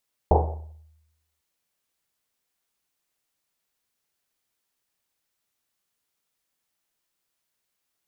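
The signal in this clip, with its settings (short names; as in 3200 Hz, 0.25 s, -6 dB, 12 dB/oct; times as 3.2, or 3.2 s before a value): Risset drum, pitch 78 Hz, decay 0.97 s, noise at 620 Hz, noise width 510 Hz, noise 45%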